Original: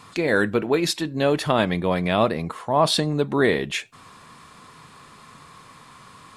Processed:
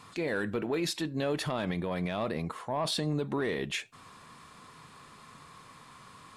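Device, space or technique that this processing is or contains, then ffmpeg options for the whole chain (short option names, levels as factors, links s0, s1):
soft clipper into limiter: -af "asoftclip=type=tanh:threshold=0.355,alimiter=limit=0.133:level=0:latency=1:release=50,volume=0.531"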